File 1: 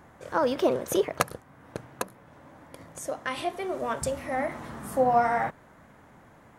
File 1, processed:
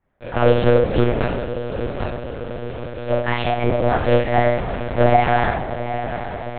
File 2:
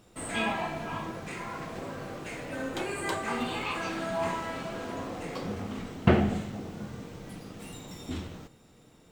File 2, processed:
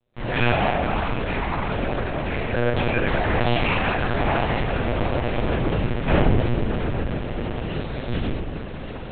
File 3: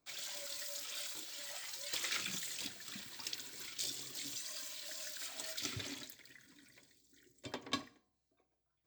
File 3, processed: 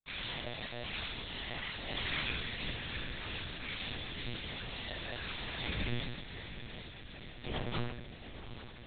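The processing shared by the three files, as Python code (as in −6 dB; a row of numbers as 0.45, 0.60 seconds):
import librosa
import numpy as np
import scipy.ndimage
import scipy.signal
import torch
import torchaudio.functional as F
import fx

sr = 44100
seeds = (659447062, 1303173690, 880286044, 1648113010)

y = fx.peak_eq(x, sr, hz=1200.0, db=-4.0, octaves=0.5)
y = fx.leveller(y, sr, passes=5)
y = fx.echo_diffused(y, sr, ms=770, feedback_pct=72, wet_db=-10.5)
y = fx.room_shoebox(y, sr, seeds[0], volume_m3=150.0, walls='mixed', distance_m=2.1)
y = fx.lpc_monotone(y, sr, seeds[1], pitch_hz=120.0, order=8)
y = y * librosa.db_to_amplitude(-13.5)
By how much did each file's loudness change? +8.5, +9.0, +1.5 LU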